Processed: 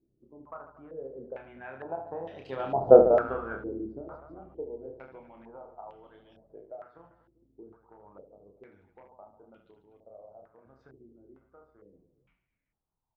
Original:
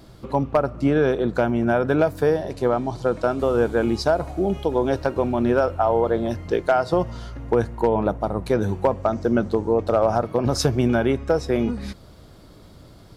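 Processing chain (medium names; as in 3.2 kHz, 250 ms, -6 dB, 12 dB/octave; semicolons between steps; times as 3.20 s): tape stop on the ending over 1.79 s; Doppler pass-by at 2.91 s, 16 m/s, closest 1.2 m; harmonic-percussive split harmonic -9 dB; on a send: reverse bouncing-ball echo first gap 30 ms, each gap 1.5×, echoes 5; on the sum: step-sequenced low-pass 2.2 Hz 350–3000 Hz; trim +2 dB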